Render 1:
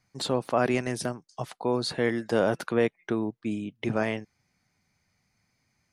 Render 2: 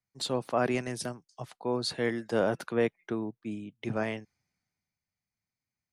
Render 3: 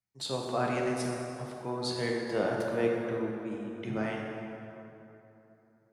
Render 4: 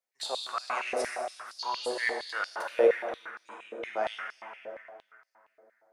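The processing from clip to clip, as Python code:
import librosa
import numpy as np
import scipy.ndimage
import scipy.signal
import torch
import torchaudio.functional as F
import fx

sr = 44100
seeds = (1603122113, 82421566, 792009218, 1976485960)

y1 = fx.band_widen(x, sr, depth_pct=40)
y1 = y1 * 10.0 ** (-4.0 / 20.0)
y2 = fx.rev_plate(y1, sr, seeds[0], rt60_s=3.1, hf_ratio=0.55, predelay_ms=0, drr_db=-1.5)
y2 = y2 * 10.0 ** (-4.5 / 20.0)
y3 = fx.spec_repair(y2, sr, seeds[1], start_s=1.62, length_s=0.34, low_hz=2700.0, high_hz=6900.0, source='after')
y3 = fx.filter_held_highpass(y3, sr, hz=8.6, low_hz=520.0, high_hz=4900.0)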